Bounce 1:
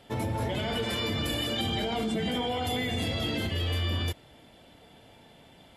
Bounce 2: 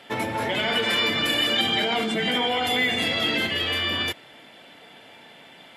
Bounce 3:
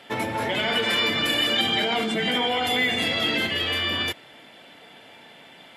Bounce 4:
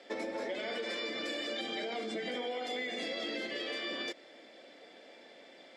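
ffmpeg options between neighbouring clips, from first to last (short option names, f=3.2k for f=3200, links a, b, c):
-af "highpass=190,equalizer=f=2k:w=0.69:g=9.5,volume=3.5dB"
-af "asoftclip=type=hard:threshold=-12dB"
-af "highpass=f=230:w=0.5412,highpass=f=230:w=1.3066,equalizer=f=340:t=q:w=4:g=4,equalizer=f=540:t=q:w=4:g=8,equalizer=f=930:t=q:w=4:g=-8,equalizer=f=1.4k:t=q:w=4:g=-5,equalizer=f=2.9k:t=q:w=4:g=-9,equalizer=f=5.1k:t=q:w=4:g=6,lowpass=f=8k:w=0.5412,lowpass=f=8k:w=1.3066,acompressor=threshold=-28dB:ratio=6,volume=-6.5dB"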